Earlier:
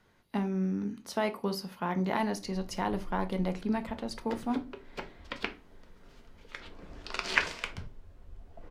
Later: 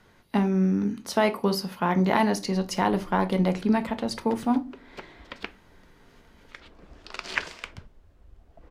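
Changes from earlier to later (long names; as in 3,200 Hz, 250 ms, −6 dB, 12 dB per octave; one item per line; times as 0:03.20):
speech +8.0 dB
background: send −11.0 dB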